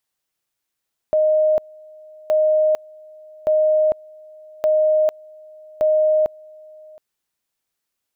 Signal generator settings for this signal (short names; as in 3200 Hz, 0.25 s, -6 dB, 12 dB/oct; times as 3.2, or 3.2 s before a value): two-level tone 619 Hz -13 dBFS, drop 26.5 dB, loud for 0.45 s, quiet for 0.72 s, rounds 5